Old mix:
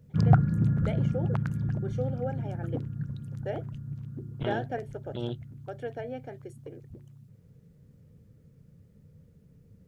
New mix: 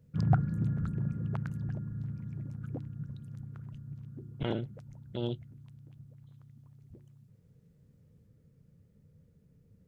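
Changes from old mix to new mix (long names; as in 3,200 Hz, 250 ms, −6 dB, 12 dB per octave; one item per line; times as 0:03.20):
first voice: muted
background −6.0 dB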